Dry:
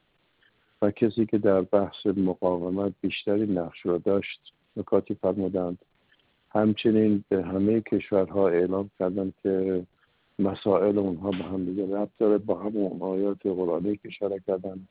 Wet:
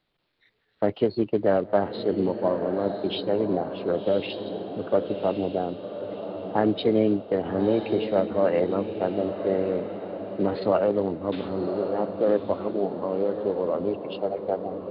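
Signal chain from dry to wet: spectral noise reduction 7 dB; formant shift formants +3 st; echo that smears into a reverb 1108 ms, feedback 44%, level -8 dB

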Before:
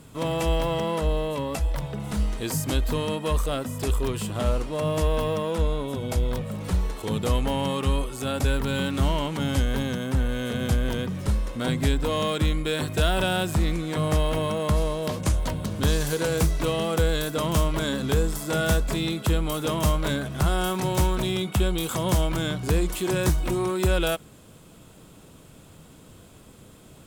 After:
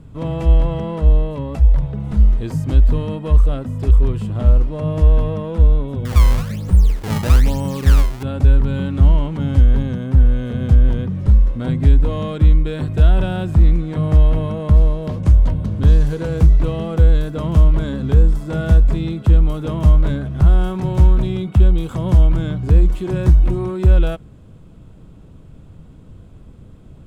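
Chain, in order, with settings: RIAA curve playback; 6.05–8.23 s: decimation with a swept rate 24×, swing 160% 1.1 Hz; trim -2.5 dB

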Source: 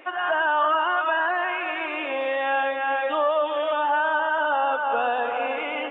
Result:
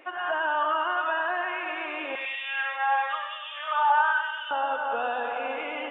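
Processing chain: 2.15–4.51 s: LFO high-pass sine 1 Hz 870–2800 Hz; thinning echo 98 ms, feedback 63%, high-pass 460 Hz, level -8 dB; trim -5 dB

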